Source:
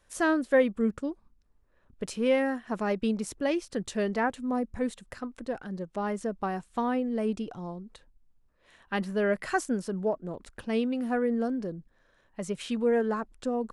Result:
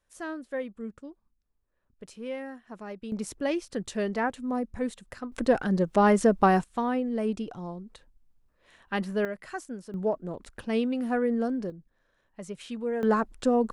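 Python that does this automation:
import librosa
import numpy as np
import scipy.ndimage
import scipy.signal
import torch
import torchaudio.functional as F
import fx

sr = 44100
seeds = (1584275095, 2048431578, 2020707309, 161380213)

y = fx.gain(x, sr, db=fx.steps((0.0, -11.0), (3.12, -0.5), (5.32, 11.0), (6.64, 0.5), (9.25, -9.0), (9.94, 1.0), (11.7, -5.5), (13.03, 6.5)))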